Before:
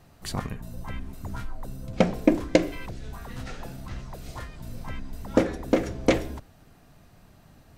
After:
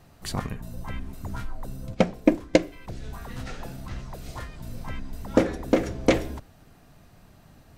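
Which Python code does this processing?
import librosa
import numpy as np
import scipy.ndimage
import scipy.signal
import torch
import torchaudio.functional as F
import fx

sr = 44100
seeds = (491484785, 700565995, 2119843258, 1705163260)

y = fx.upward_expand(x, sr, threshold_db=-34.0, expansion=1.5, at=(1.93, 2.87), fade=0.02)
y = y * 10.0 ** (1.0 / 20.0)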